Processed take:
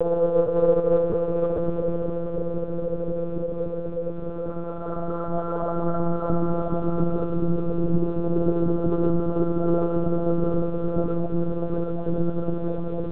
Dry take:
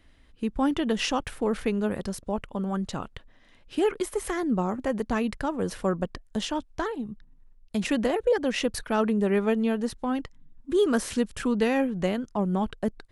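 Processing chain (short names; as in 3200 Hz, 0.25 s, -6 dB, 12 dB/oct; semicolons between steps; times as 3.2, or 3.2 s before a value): steep low-pass 1400 Hz 96 dB/oct; notch 880 Hz, Q 5.6; in parallel at -9 dB: bit-crush 7-bit; on the sum: Paulstretch 8.2×, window 0.50 s, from 8.24; monotone LPC vocoder at 8 kHz 170 Hz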